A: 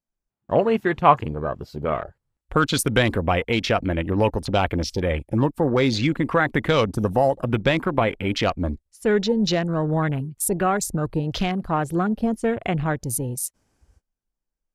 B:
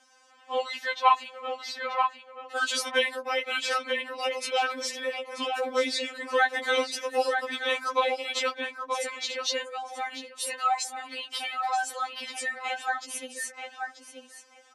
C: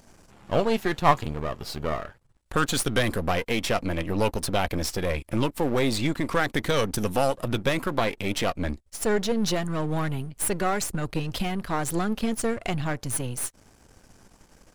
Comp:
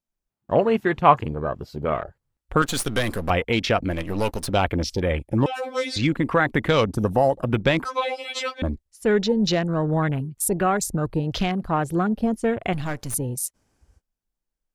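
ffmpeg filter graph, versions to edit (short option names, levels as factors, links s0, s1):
-filter_complex "[2:a]asplit=3[s0][s1][s2];[1:a]asplit=2[s3][s4];[0:a]asplit=6[s5][s6][s7][s8][s9][s10];[s5]atrim=end=2.622[s11];[s0]atrim=start=2.618:end=3.302[s12];[s6]atrim=start=3.298:end=3.99[s13];[s1]atrim=start=3.83:end=4.58[s14];[s7]atrim=start=4.42:end=5.462[s15];[s3]atrim=start=5.458:end=5.962[s16];[s8]atrim=start=5.958:end=7.852[s17];[s4]atrim=start=7.848:end=8.622[s18];[s9]atrim=start=8.618:end=12.732[s19];[s2]atrim=start=12.728:end=13.142[s20];[s10]atrim=start=13.138[s21];[s11][s12]acrossfade=d=0.004:c1=hsin:c2=hsin[s22];[s22][s13]acrossfade=d=0.004:c1=hsin:c2=hsin[s23];[s23][s14]acrossfade=d=0.16:c1=tri:c2=tri[s24];[s24][s15]acrossfade=d=0.16:c1=tri:c2=tri[s25];[s25][s16]acrossfade=d=0.004:c1=hsin:c2=hsin[s26];[s26][s17]acrossfade=d=0.004:c1=hsin:c2=hsin[s27];[s27][s18]acrossfade=d=0.004:c1=hsin:c2=hsin[s28];[s28][s19]acrossfade=d=0.004:c1=hsin:c2=hsin[s29];[s29][s20]acrossfade=d=0.004:c1=hsin:c2=hsin[s30];[s30][s21]acrossfade=d=0.004:c1=hsin:c2=hsin"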